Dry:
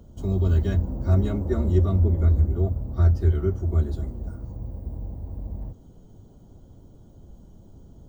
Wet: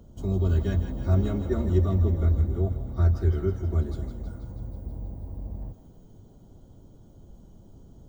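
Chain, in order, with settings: bell 71 Hz -3.5 dB 0.44 oct; on a send: thinning echo 0.161 s, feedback 72%, high-pass 940 Hz, level -8.5 dB; on the sum: gain -1.5 dB

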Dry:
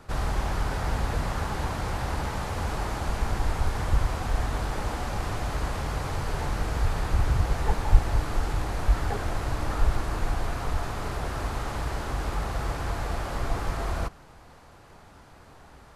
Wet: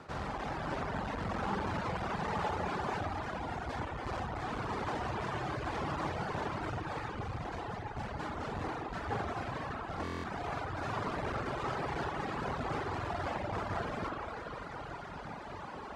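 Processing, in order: LPF 7800 Hz 12 dB/oct; reverse; compressor 6:1, threshold -36 dBFS, peak gain reduction 25.5 dB; reverse; HPF 120 Hz 12 dB/oct; high shelf 5500 Hz -9 dB; on a send: echo with dull and thin repeats by turns 0.168 s, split 1400 Hz, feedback 84%, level -7 dB; on the sum: spring tank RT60 3.4 s, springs 45/55 ms, chirp 30 ms, DRR -0.5 dB; reverb removal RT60 1.9 s; stuck buffer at 10.03, samples 1024, times 8; core saturation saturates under 330 Hz; gain +7.5 dB

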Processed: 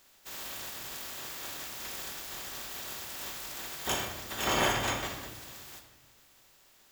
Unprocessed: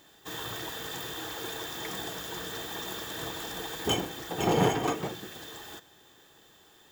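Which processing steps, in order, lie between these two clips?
spectral limiter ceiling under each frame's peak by 20 dB; bell 170 Hz -14 dB 0.21 oct; shoebox room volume 760 m³, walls mixed, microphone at 1.1 m; gain -4.5 dB

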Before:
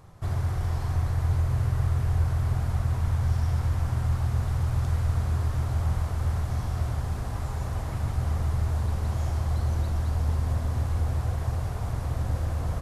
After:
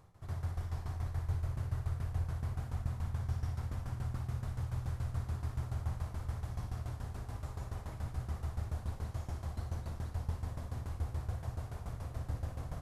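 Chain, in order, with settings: tremolo saw down 7 Hz, depth 85%; on a send: flutter echo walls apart 9.9 m, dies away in 0.36 s; on the sum: gain -8 dB

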